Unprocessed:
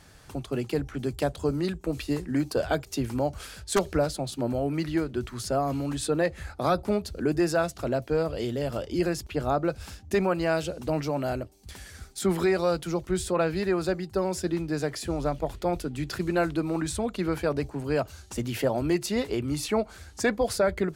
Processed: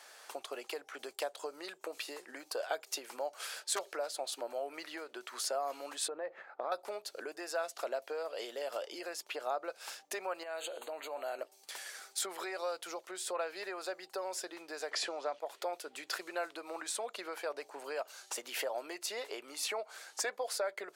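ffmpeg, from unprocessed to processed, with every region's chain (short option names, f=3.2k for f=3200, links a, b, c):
-filter_complex "[0:a]asettb=1/sr,asplit=3[a][b][c];[a]atrim=end=6.084[d];[b]atrim=start=6.08:end=6.72,asetpts=PTS-STARTPTS,afade=t=in:d=0.004:c=qsin,afade=t=out:st=0.636:d=0.004:c=qsin,lowpass=1.6k,acompressor=threshold=-28dB:ratio=3:attack=3.2:release=140:knee=1:detection=peak,lowshelf=f=170:g=11.5[e];[c]atrim=start=6.716[f];[d][e]acrossfade=d=0.004:c1=hsin:c2=qsin[g];[g][f]acrossfade=d=0.004:c1=qsin:c2=hsin,asettb=1/sr,asplit=3[h][i][j];[h]atrim=end=10.434[k];[i]atrim=start=10.43:end=11.39,asetpts=PTS-STARTPTS,afade=t=in:d=0.004:c=qsin,afade=t=out:st=0.956:d=0.004:c=qsin,asuperstop=centerf=5400:order=20:qfactor=3.1,bandreject=f=119.8:t=h:w=4,bandreject=f=239.6:t=h:w=4,bandreject=f=359.4:t=h:w=4,bandreject=f=479.2:t=h:w=4,bandreject=f=599:t=h:w=4,bandreject=f=718.8:t=h:w=4,bandreject=f=838.6:t=h:w=4,bandreject=f=958.4:t=h:w=4,bandreject=f=1.0782k:t=h:w=4,bandreject=f=1.198k:t=h:w=4,bandreject=f=1.3178k:t=h:w=4,bandreject=f=1.4376k:t=h:w=4,bandreject=f=1.5574k:t=h:w=4,bandreject=f=1.6772k:t=h:w=4,bandreject=f=1.797k:t=h:w=4,bandreject=f=1.9168k:t=h:w=4,bandreject=f=2.0366k:t=h:w=4,bandreject=f=2.1564k:t=h:w=4,bandreject=f=2.2762k:t=h:w=4,bandreject=f=2.396k:t=h:w=4,bandreject=f=2.5158k:t=h:w=4,bandreject=f=2.6356k:t=h:w=4,bandreject=f=2.7554k:t=h:w=4,bandreject=f=2.8752k:t=h:w=4,bandreject=f=2.995k:t=h:w=4,bandreject=f=3.1148k:t=h:w=4,bandreject=f=3.2346k:t=h:w=4,bandreject=f=3.3544k:t=h:w=4,bandreject=f=3.4742k:t=h:w=4,bandreject=f=3.594k:t=h:w=4,bandreject=f=3.7138k:t=h:w=4,bandreject=f=3.8336k:t=h:w=4,bandreject=f=3.9534k:t=h:w=4,bandreject=f=4.0732k:t=h:w=4,bandreject=f=4.193k:t=h:w=4,bandreject=f=4.3128k:t=h:w=4,acompressor=threshold=-33dB:ratio=12:attack=3.2:release=140:knee=1:detection=peak[l];[j]atrim=start=11.386[m];[k][l]acrossfade=d=0.004:c1=hsin:c2=qsin[n];[n][m]acrossfade=d=0.004:c1=qsin:c2=hsin,asettb=1/sr,asplit=3[o][p][q];[o]atrim=end=14.914[r];[p]atrim=start=14.91:end=15.4,asetpts=PTS-STARTPTS,afade=t=in:d=0.004:c=qsin,afade=t=out:st=0.486:d=0.004:c=qsin,lowpass=5.5k,acontrast=84[s];[q]atrim=start=15.396[t];[r][s]acrossfade=d=0.004:c1=hsin:c2=qsin[u];[u][t]acrossfade=d=0.004:c1=qsin:c2=hsin,acompressor=threshold=-32dB:ratio=6,highpass=f=520:w=0.5412,highpass=f=520:w=1.3066,volume=1.5dB"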